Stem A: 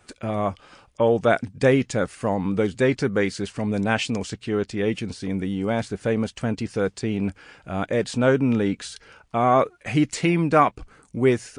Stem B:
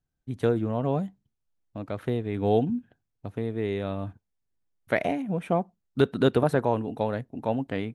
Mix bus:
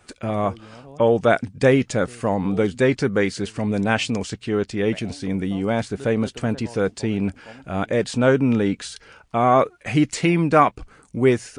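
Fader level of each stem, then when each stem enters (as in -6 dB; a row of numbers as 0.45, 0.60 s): +2.0, -16.5 dB; 0.00, 0.00 s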